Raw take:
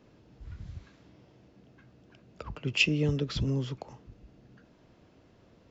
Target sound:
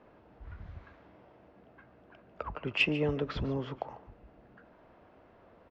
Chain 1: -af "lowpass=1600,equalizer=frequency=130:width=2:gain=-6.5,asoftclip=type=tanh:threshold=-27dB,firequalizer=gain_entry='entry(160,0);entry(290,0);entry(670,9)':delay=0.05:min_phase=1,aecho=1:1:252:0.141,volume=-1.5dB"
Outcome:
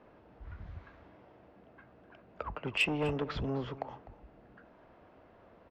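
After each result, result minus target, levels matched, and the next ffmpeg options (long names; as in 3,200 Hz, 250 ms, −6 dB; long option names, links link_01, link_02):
echo 106 ms late; soft clipping: distortion +17 dB
-af "lowpass=1600,equalizer=frequency=130:width=2:gain=-6.5,asoftclip=type=tanh:threshold=-27dB,firequalizer=gain_entry='entry(160,0);entry(290,0);entry(670,9)':delay=0.05:min_phase=1,aecho=1:1:146:0.141,volume=-1.5dB"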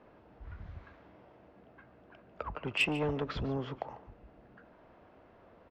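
soft clipping: distortion +17 dB
-af "lowpass=1600,equalizer=frequency=130:width=2:gain=-6.5,asoftclip=type=tanh:threshold=-16dB,firequalizer=gain_entry='entry(160,0);entry(290,0);entry(670,9)':delay=0.05:min_phase=1,aecho=1:1:146:0.141,volume=-1.5dB"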